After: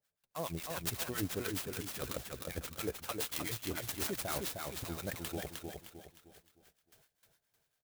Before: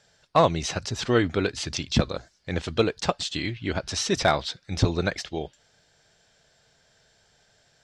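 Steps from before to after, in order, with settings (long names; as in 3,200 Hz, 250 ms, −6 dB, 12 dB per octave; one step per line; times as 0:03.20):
noise gate with hold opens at −51 dBFS
high-shelf EQ 3,400 Hz +11.5 dB
reversed playback
downward compressor 10 to 1, threshold −30 dBFS, peak gain reduction 17.5 dB
reversed playback
two-band tremolo in antiphase 7.3 Hz, depth 100%, crossover 870 Hz
on a send: repeating echo 308 ms, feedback 40%, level −4 dB
on the sum: converter with an unsteady clock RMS 0.06 ms
level −1 dB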